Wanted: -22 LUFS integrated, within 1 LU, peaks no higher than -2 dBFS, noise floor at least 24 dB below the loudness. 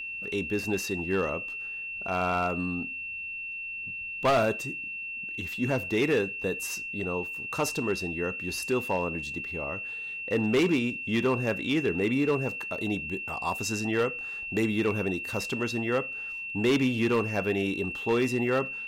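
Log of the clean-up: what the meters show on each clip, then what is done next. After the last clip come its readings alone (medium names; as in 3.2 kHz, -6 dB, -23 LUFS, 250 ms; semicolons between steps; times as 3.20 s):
clipped samples 0.8%; clipping level -19.0 dBFS; steady tone 2.7 kHz; tone level -34 dBFS; loudness -29.0 LUFS; peak level -19.0 dBFS; loudness target -22.0 LUFS
-> clip repair -19 dBFS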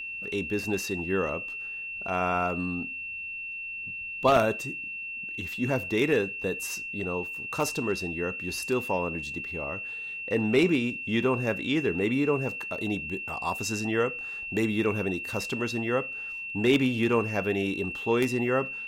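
clipped samples 0.0%; steady tone 2.7 kHz; tone level -34 dBFS
-> band-stop 2.7 kHz, Q 30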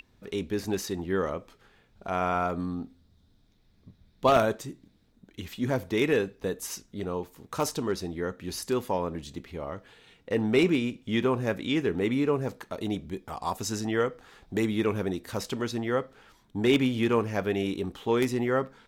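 steady tone not found; loudness -29.0 LUFS; peak level -10.0 dBFS; loudness target -22.0 LUFS
-> trim +7 dB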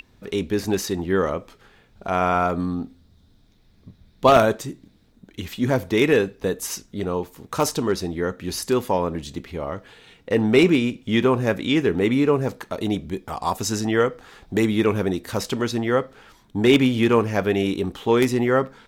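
loudness -22.0 LUFS; peak level -3.0 dBFS; noise floor -57 dBFS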